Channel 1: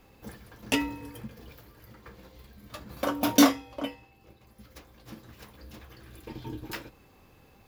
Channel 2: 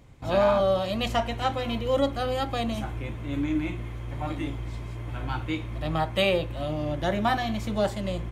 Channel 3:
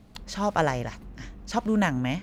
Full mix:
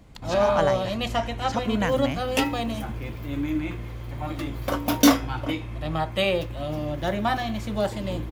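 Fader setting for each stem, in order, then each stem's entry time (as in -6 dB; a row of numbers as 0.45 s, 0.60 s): +2.0 dB, 0.0 dB, -2.0 dB; 1.65 s, 0.00 s, 0.00 s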